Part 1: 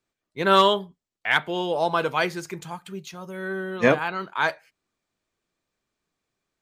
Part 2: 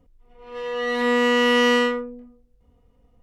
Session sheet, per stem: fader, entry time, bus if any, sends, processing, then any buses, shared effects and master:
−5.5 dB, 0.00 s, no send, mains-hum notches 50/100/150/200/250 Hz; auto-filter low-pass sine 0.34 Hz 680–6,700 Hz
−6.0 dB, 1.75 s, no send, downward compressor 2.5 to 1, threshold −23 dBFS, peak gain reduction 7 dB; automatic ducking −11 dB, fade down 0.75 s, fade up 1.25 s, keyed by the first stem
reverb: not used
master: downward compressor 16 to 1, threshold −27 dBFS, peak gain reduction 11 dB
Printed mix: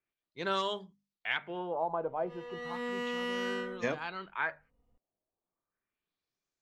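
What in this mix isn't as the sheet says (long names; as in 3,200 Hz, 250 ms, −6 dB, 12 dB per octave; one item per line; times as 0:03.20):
stem 1 −5.5 dB → −12.0 dB
stem 2: missing downward compressor 2.5 to 1, threshold −23 dBFS, peak gain reduction 7 dB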